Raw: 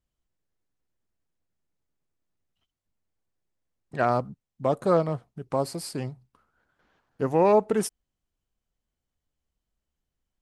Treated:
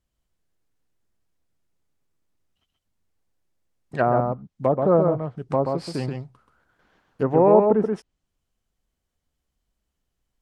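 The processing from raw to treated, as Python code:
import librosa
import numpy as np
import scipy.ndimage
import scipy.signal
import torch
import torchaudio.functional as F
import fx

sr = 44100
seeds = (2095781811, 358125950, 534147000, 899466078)

p1 = x + fx.echo_single(x, sr, ms=130, db=-4.5, dry=0)
p2 = fx.env_lowpass_down(p1, sr, base_hz=1000.0, full_db=-20.5)
y = p2 * 10.0 ** (4.0 / 20.0)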